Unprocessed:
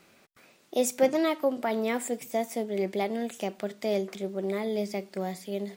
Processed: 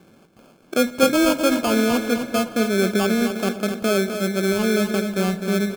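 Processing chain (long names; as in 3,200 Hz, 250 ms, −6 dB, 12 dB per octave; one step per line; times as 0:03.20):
Bessel low-pass filter 1,700 Hz, order 2
parametric band 180 Hz +8.5 dB 2.7 octaves
in parallel at −2 dB: brickwall limiter −19.5 dBFS, peak gain reduction 11.5 dB
on the sum: decimation without filtering 23×
repeating echo 255 ms, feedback 30%, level −8 dB
on a send at −16 dB: convolution reverb RT60 5.4 s, pre-delay 90 ms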